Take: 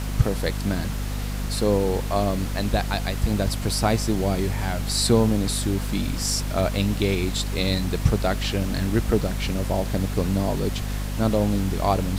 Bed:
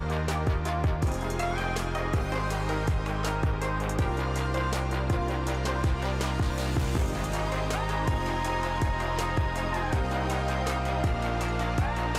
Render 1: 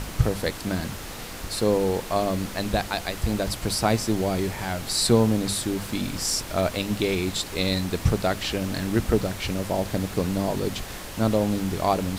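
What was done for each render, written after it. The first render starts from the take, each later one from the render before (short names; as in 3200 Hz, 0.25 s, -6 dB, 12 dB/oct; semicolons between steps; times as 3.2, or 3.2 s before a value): notches 50/100/150/200/250 Hz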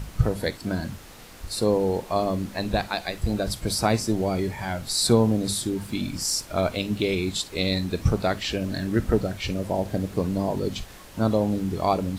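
noise print and reduce 9 dB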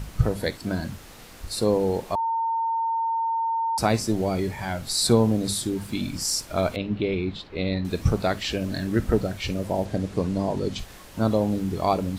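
2.15–3.78 bleep 910 Hz -22 dBFS; 6.76–7.85 air absorption 330 m; 9.85–10.79 LPF 9200 Hz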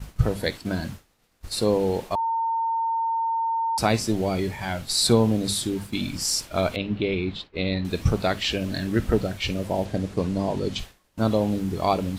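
dynamic EQ 3000 Hz, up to +5 dB, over -45 dBFS, Q 1.3; expander -31 dBFS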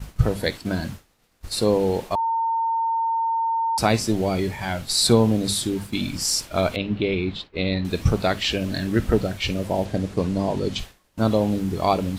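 gain +2 dB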